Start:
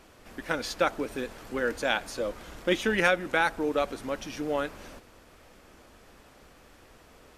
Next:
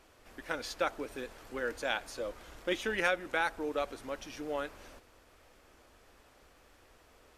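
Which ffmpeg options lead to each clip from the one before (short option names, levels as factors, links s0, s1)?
-af "equalizer=f=180:t=o:w=1.1:g=-7,volume=0.501"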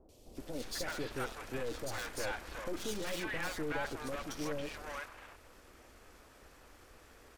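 -filter_complex "[0:a]aeval=exprs='(tanh(141*val(0)+0.8)-tanh(0.8))/141':c=same,acrossover=split=690|3200[s0][s1][s2];[s2]adelay=90[s3];[s1]adelay=370[s4];[s0][s4][s3]amix=inputs=3:normalize=0,volume=2.82"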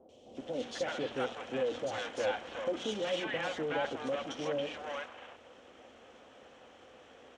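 -af "highpass=120,equalizer=f=240:t=q:w=4:g=7,equalizer=f=520:t=q:w=4:g=9,equalizer=f=750:t=q:w=4:g=7,equalizer=f=3100:t=q:w=4:g=10,equalizer=f=4700:t=q:w=4:g=-9,lowpass=f=6500:w=0.5412,lowpass=f=6500:w=1.3066,bandreject=f=60:t=h:w=6,bandreject=f=120:t=h:w=6,bandreject=f=180:t=h:w=6,bandreject=f=240:t=h:w=6,bandreject=f=300:t=h:w=6"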